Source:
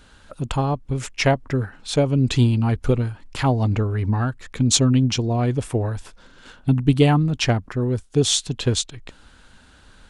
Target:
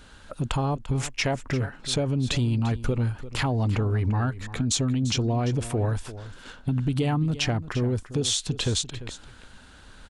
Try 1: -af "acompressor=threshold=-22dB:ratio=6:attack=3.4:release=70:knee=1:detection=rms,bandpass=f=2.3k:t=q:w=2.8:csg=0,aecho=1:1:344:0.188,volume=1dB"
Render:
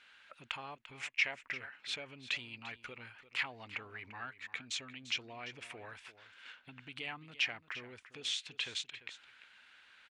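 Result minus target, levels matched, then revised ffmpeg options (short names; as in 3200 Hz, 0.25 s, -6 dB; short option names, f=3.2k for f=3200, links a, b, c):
2000 Hz band +11.0 dB
-af "acompressor=threshold=-22dB:ratio=6:attack=3.4:release=70:knee=1:detection=rms,aecho=1:1:344:0.188,volume=1dB"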